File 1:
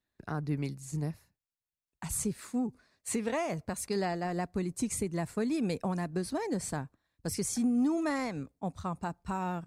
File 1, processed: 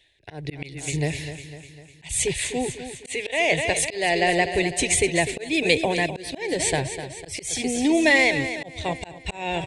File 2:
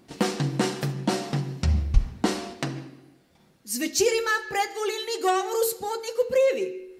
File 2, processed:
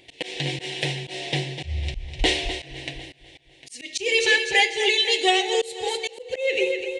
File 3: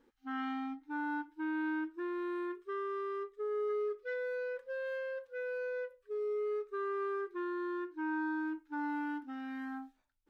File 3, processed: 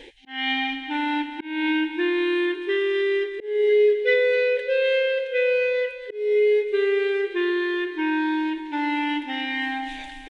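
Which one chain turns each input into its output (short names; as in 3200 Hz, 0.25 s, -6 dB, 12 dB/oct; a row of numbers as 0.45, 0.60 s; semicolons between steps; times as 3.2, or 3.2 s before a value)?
band shelf 2600 Hz +14.5 dB 1.3 oct; fixed phaser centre 520 Hz, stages 4; reverse; upward compressor, threshold -41 dBFS; reverse; downsampling 22050 Hz; on a send: feedback echo 0.251 s, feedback 53%, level -11 dB; on the sum: auto swell 0.261 s; match loudness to -23 LUFS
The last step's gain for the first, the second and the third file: +15.0, +4.0, +17.5 dB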